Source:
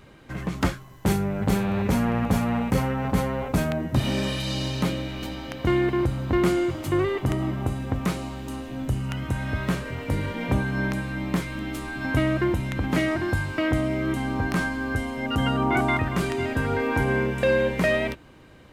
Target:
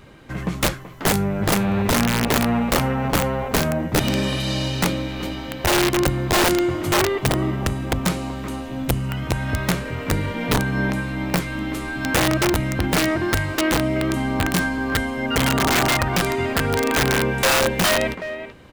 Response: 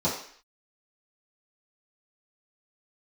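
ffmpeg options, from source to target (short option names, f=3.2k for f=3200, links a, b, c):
-filter_complex "[0:a]asplit=2[a][b];[b]adelay=380,highpass=300,lowpass=3.4k,asoftclip=type=hard:threshold=-18dB,volume=-10dB[c];[a][c]amix=inputs=2:normalize=0,aeval=exprs='(mod(5.96*val(0)+1,2)-1)/5.96':c=same,volume=4dB"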